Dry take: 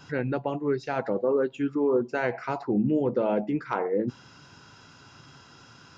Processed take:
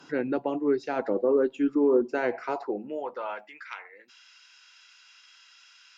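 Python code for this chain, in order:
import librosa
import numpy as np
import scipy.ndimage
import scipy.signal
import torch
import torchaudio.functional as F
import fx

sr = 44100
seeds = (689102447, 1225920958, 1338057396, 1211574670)

y = fx.filter_sweep_highpass(x, sr, from_hz=290.0, to_hz=2300.0, start_s=2.36, end_s=3.75, q=1.8)
y = fx.cheby_harmonics(y, sr, harmonics=(4,), levels_db=(-42,), full_scale_db=-9.0)
y = F.gain(torch.from_numpy(y), -2.0).numpy()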